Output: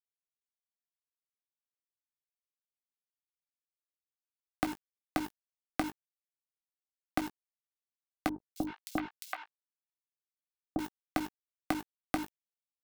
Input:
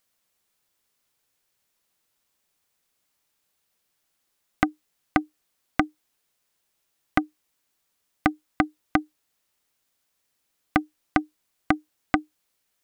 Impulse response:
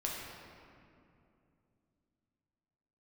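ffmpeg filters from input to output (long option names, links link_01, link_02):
-filter_complex "[0:a]aemphasis=mode=production:type=50fm,bandreject=frequency=50:width_type=h:width=6,bandreject=frequency=100:width_type=h:width=6,bandreject=frequency=150:width_type=h:width=6,bandreject=frequency=200:width_type=h:width=6,bandreject=frequency=250:width_type=h:width=6,bandreject=frequency=300:width_type=h:width=6,acrossover=split=180|810[link_01][link_02][link_03];[link_01]acompressor=threshold=-40dB:ratio=4[link_04];[link_02]acompressor=threshold=-25dB:ratio=4[link_05];[link_03]acompressor=threshold=-35dB:ratio=4[link_06];[link_04][link_05][link_06]amix=inputs=3:normalize=0,acrusher=bits=5:mix=0:aa=0.000001,asplit=2[link_07][link_08];[link_08]adelay=19,volume=-11dB[link_09];[link_07][link_09]amix=inputs=2:normalize=0,asettb=1/sr,asplit=3[link_10][link_11][link_12];[link_10]atrim=end=8.294[link_13];[link_11]atrim=start=8.29:end=10.79,asetpts=PTS-STARTPTS,afade=type=in:duration=0.004:curve=qsin,afade=type=out:start_time=2.496:duration=0.004:curve=qsin,acrossover=split=750|3600[link_14][link_15][link_16];[link_16]adelay=270[link_17];[link_15]adelay=380[link_18];[link_14][link_18][link_17]amix=inputs=3:normalize=0,atrim=end_sample=110250[link_19];[link_12]atrim=start=10.786[link_20];[link_13][link_19]acrossfade=duration=0.004:curve1=hsin:curve2=qsin[link_21];[link_21][link_20]acrossfade=duration=0.004:curve1=qsin:curve2=hsin,volume=-4dB"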